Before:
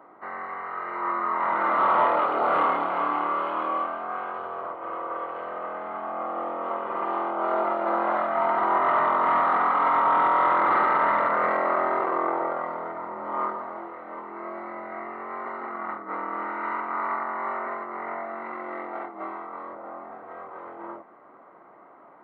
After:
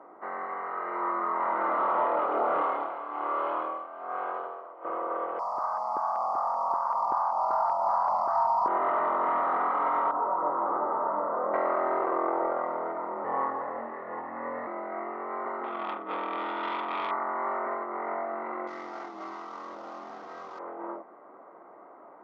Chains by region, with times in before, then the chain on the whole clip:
2.62–4.85 s: tone controls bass -10 dB, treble +7 dB + tremolo 1.2 Hz, depth 76%
5.39–8.68 s: one-bit delta coder 64 kbps, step -43 dBFS + FFT filter 140 Hz 0 dB, 260 Hz -13 dB, 380 Hz -27 dB, 600 Hz -4 dB, 950 Hz +12 dB, 1.8 kHz -6 dB, 3.3 kHz -26 dB, 4.7 kHz +11 dB, 8.2 kHz -6 dB + LFO notch square 2.6 Hz 330–1600 Hz
10.11–11.54 s: low-pass 1.2 kHz 24 dB/octave + detune thickener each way 16 cents
13.24–14.67 s: high-pass 290 Hz 6 dB/octave + peaking EQ 2 kHz +8 dB 0.74 oct + frequency shift -110 Hz
15.64–17.11 s: self-modulated delay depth 0.18 ms + peaking EQ 3.5 kHz +10.5 dB 0.21 oct
18.67–20.59 s: CVSD coder 32 kbps + peaking EQ 560 Hz -10 dB 1.8 oct + level flattener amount 50%
whole clip: high-pass 440 Hz 12 dB/octave; compression 2.5:1, threshold -26 dBFS; tilt EQ -4.5 dB/octave

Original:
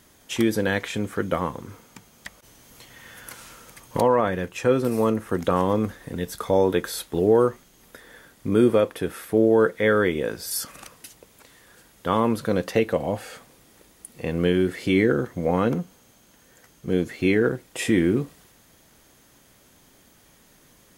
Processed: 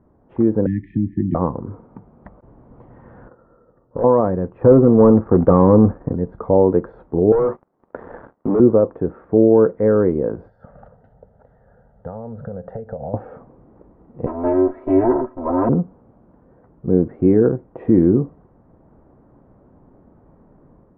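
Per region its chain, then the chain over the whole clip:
0.66–1.35 s: brick-wall FIR band-stop 360–1700 Hz + three bands compressed up and down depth 70%
3.28–4.04 s: companding laws mixed up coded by A + rippled Chebyshev low-pass 1.9 kHz, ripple 9 dB + hard clipper -22.5 dBFS
4.61–6.13 s: low-pass 2.8 kHz + waveshaping leveller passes 2
7.32–8.60 s: frequency weighting A + waveshaping leveller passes 5 + compression 1.5:1, threshold -33 dBFS
10.48–13.14 s: compression 12:1, threshold -29 dBFS + static phaser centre 1.6 kHz, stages 8
14.26–15.69 s: comb filter that takes the minimum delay 7.7 ms + tone controls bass -13 dB, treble -4 dB + comb 3.1 ms, depth 84%
whole clip: tilt shelf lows +4 dB, about 830 Hz; level rider gain up to 6 dB; low-pass 1.1 kHz 24 dB/octave

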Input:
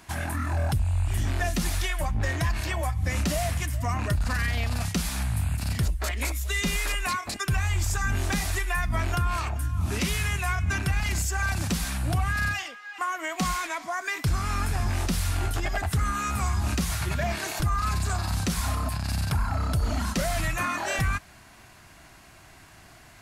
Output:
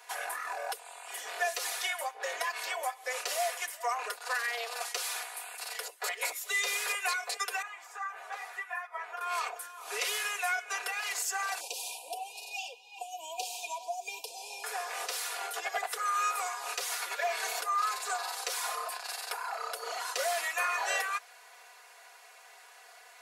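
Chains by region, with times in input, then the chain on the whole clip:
7.62–9.21 s: three-band isolator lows -15 dB, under 560 Hz, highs -17 dB, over 2.1 kHz + three-phase chorus
11.60–14.64 s: compression 1.5:1, threshold -32 dBFS + brick-wall FIR band-stop 1–2.3 kHz
whole clip: steep high-pass 400 Hz 72 dB/octave; comb 4.1 ms, depth 84%; trim -4 dB

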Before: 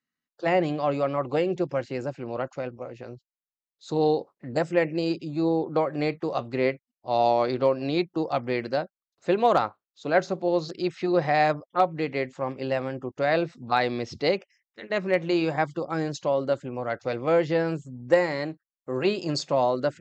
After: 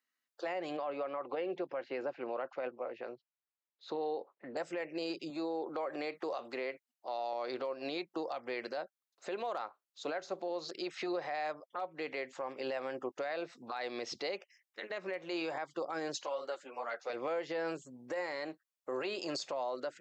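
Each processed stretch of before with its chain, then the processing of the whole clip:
0.77–4.57 s: band-pass 140–3900 Hz + distance through air 130 m
5.30–7.33 s: high-pass 170 Hz + compression 2:1, threshold -32 dBFS
16.23–17.10 s: high-pass 660 Hz 6 dB/octave + three-phase chorus
whole clip: high-pass 470 Hz 12 dB/octave; compression 6:1, threshold -32 dBFS; peak limiter -29.5 dBFS; trim +1 dB

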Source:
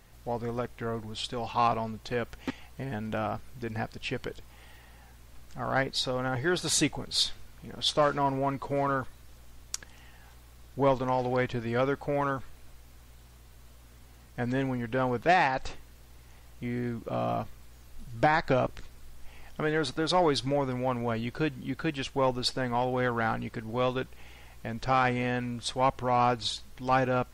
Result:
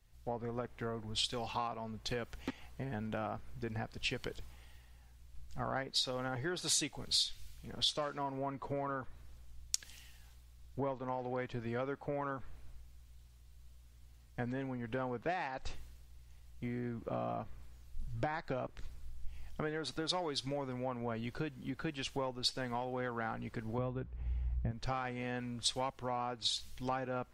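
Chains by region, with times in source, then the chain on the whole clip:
23.78–24.71 s: high-pass 41 Hz + RIAA curve playback
whole clip: treble shelf 12 kHz -5 dB; compression 12:1, threshold -35 dBFS; three bands expanded up and down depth 70%

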